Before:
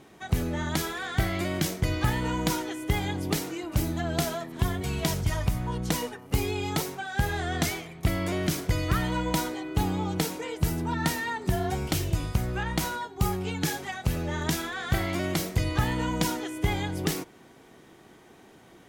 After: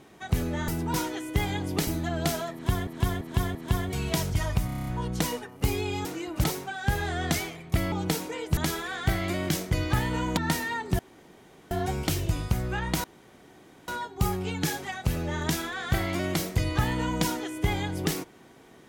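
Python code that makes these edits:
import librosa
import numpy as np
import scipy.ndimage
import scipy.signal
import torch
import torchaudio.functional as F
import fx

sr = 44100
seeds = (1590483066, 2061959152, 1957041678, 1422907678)

y = fx.edit(x, sr, fx.swap(start_s=0.68, length_s=1.8, other_s=10.67, other_length_s=0.26),
    fx.move(start_s=3.41, length_s=0.39, to_s=6.75),
    fx.repeat(start_s=4.46, length_s=0.34, count=4),
    fx.stutter(start_s=5.57, slice_s=0.03, count=8),
    fx.cut(start_s=8.23, length_s=1.79),
    fx.insert_room_tone(at_s=11.55, length_s=0.72),
    fx.insert_room_tone(at_s=12.88, length_s=0.84), tone=tone)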